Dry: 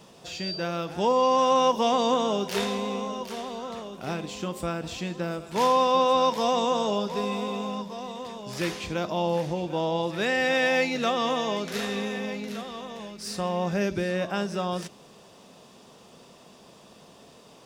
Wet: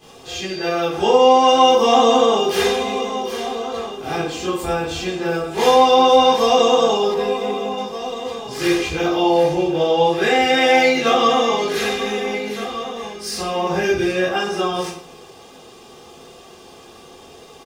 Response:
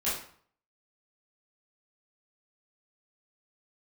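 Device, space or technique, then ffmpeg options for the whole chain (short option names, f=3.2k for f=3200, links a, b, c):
microphone above a desk: -filter_complex "[0:a]aecho=1:1:2.5:0.67[a];[1:a]atrim=start_sample=2205[b];[a][b]afir=irnorm=-1:irlink=0,asettb=1/sr,asplit=3[c][d][e];[c]atrim=end=7.144[f];[d]atrim=start=7.14:end=7.78,asetpts=PTS-STARTPTS,afade=t=in:d=0.004:c=qsin,afade=t=out:st=0.636:d=0.004:c=qsin,equalizer=f=7.6k:t=o:w=2.9:g=-6[g];[e]atrim=start=7.776[h];[f][g]acrossfade=d=0.004:c1=hsin:c2=qsin[i];[i][h]acrossfade=d=0.004:c1=qsin:c2=hsin,volume=1dB"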